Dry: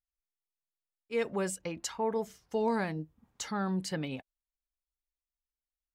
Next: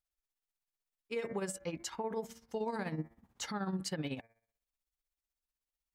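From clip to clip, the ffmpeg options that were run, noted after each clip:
-af "bandreject=f=114.2:t=h:w=4,bandreject=f=228.4:t=h:w=4,bandreject=f=342.6:t=h:w=4,bandreject=f=456.8:t=h:w=4,bandreject=f=571:t=h:w=4,bandreject=f=685.2:t=h:w=4,bandreject=f=799.4:t=h:w=4,bandreject=f=913.6:t=h:w=4,bandreject=f=1.0278k:t=h:w=4,bandreject=f=1.142k:t=h:w=4,bandreject=f=1.2562k:t=h:w=4,bandreject=f=1.3704k:t=h:w=4,bandreject=f=1.4846k:t=h:w=4,bandreject=f=1.5988k:t=h:w=4,bandreject=f=1.713k:t=h:w=4,bandreject=f=1.8272k:t=h:w=4,bandreject=f=1.9414k:t=h:w=4,bandreject=f=2.0556k:t=h:w=4,bandreject=f=2.1698k:t=h:w=4,bandreject=f=2.284k:t=h:w=4,bandreject=f=2.3982k:t=h:w=4,tremolo=f=16:d=0.7,alimiter=level_in=7dB:limit=-24dB:level=0:latency=1:release=128,volume=-7dB,volume=3.5dB"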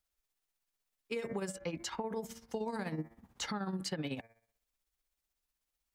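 -filter_complex "[0:a]acrossover=split=190|5500[a][b][c];[a]acompressor=threshold=-50dB:ratio=4[d];[b]acompressor=threshold=-42dB:ratio=4[e];[c]acompressor=threshold=-55dB:ratio=4[f];[d][e][f]amix=inputs=3:normalize=0,volume=5.5dB"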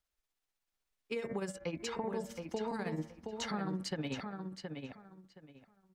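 -filter_complex "[0:a]highshelf=f=8.2k:g=-8,asplit=2[a][b];[b]adelay=721,lowpass=f=4.1k:p=1,volume=-5.5dB,asplit=2[c][d];[d]adelay=721,lowpass=f=4.1k:p=1,volume=0.22,asplit=2[e][f];[f]adelay=721,lowpass=f=4.1k:p=1,volume=0.22[g];[a][c][e][g]amix=inputs=4:normalize=0"

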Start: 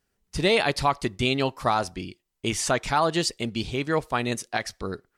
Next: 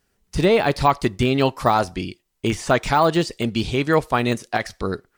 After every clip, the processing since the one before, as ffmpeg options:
-af "deesser=0.9,volume=7dB"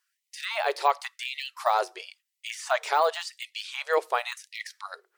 -af "afftfilt=real='re*gte(b*sr/1024,330*pow(1900/330,0.5+0.5*sin(2*PI*0.93*pts/sr)))':imag='im*gte(b*sr/1024,330*pow(1900/330,0.5+0.5*sin(2*PI*0.93*pts/sr)))':win_size=1024:overlap=0.75,volume=-5.5dB"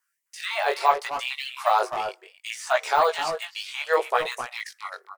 -filter_complex "[0:a]asplit=2[a][b];[b]adelay=260,highpass=300,lowpass=3.4k,asoftclip=type=hard:threshold=-19dB,volume=-7dB[c];[a][c]amix=inputs=2:normalize=0,acrossover=split=890|2400|5600[d][e][f][g];[f]aeval=exprs='sgn(val(0))*max(abs(val(0))-0.00237,0)':c=same[h];[d][e][h][g]amix=inputs=4:normalize=0,flanger=delay=15.5:depth=5.1:speed=0.69,volume=6dB"

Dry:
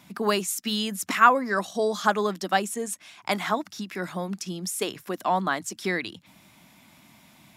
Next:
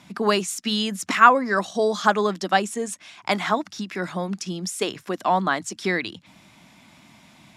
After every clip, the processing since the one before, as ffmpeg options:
-af "lowpass=8k,volume=3.5dB"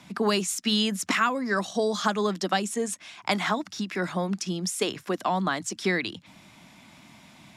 -filter_complex "[0:a]acrossover=split=250|3000[a][b][c];[b]acompressor=threshold=-23dB:ratio=6[d];[a][d][c]amix=inputs=3:normalize=0"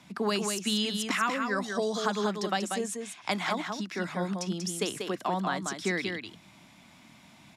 -af "aecho=1:1:189:0.531,volume=-4.5dB"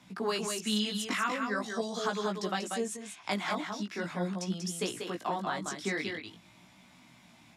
-af "flanger=delay=16:depth=4.1:speed=0.43"

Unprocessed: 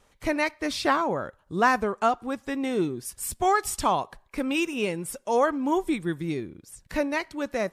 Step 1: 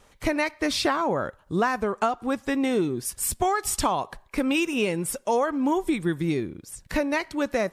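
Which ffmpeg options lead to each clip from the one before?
-af "acompressor=threshold=-25dB:ratio=10,volume=5.5dB"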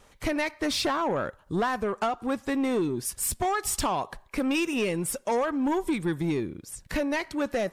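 -af "asoftclip=type=tanh:threshold=-20dB"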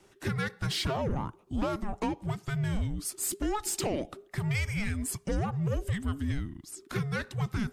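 -af "afreqshift=-420,volume=-3.5dB"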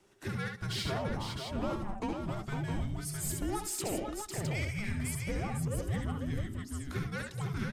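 -af "aecho=1:1:68|77|188|502|661:0.473|0.376|0.1|0.501|0.501,volume=-6dB"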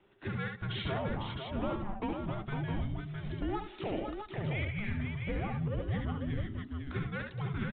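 -af "aresample=8000,aresample=44100"

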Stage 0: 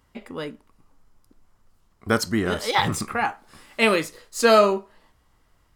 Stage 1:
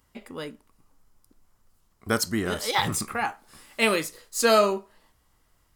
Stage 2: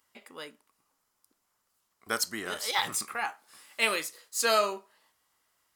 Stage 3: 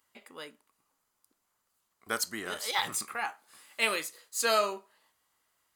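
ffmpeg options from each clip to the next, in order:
-af "highshelf=f=6.1k:g=10,volume=-4dB"
-af "highpass=f=940:p=1,volume=-2dB"
-af "bandreject=f=5.4k:w=11,volume=-1.5dB"

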